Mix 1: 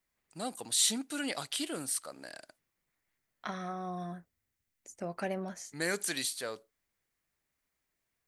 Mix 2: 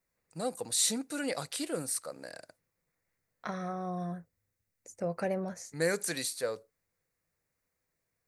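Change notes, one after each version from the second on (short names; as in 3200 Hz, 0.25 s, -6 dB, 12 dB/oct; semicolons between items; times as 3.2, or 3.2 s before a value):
master: add thirty-one-band EQ 100 Hz +9 dB, 160 Hz +7 dB, 500 Hz +10 dB, 3150 Hz -10 dB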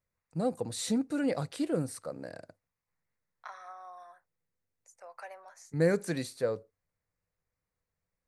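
first voice: add tilt -3.5 dB/oct; second voice: add ladder high-pass 750 Hz, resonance 40%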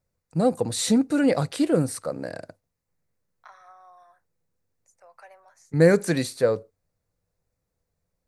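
first voice +9.5 dB; second voice -3.5 dB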